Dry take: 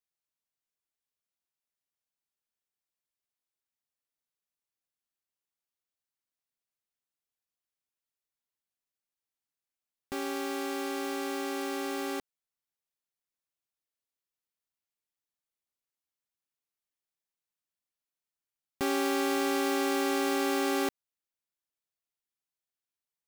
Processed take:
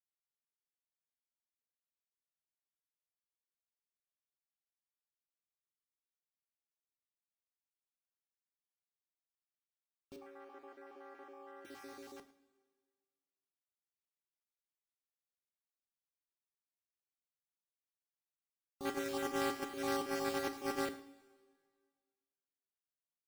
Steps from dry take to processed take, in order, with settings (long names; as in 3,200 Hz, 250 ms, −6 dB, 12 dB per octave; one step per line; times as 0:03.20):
time-frequency cells dropped at random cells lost 34%
noise gate −27 dBFS, range −18 dB
in parallel at −6.5 dB: decimation without filtering 11×
0:10.16–0:11.65: on the sum: three-way crossover with the lows and the highs turned down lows −18 dB, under 320 Hz, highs −22 dB, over 2,100 Hz
on a send: single-tap delay 107 ms −19.5 dB
on the sum: coupled-rooms reverb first 0.44 s, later 1.8 s, from −16 dB, DRR 8 dB